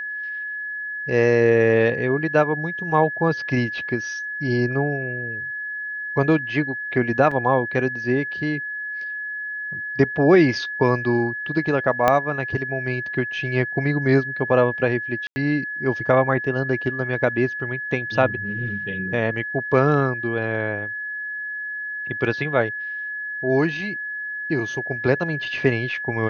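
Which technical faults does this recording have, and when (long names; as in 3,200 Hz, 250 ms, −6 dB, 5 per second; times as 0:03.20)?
whistle 1,700 Hz −27 dBFS
0:07.31: drop-out 4.4 ms
0:12.08: click −5 dBFS
0:15.27–0:15.36: drop-out 90 ms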